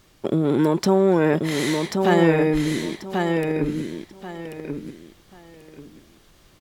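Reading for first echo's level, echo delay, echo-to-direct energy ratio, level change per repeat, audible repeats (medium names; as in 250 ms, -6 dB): -4.5 dB, 1087 ms, -4.0 dB, -12.5 dB, 3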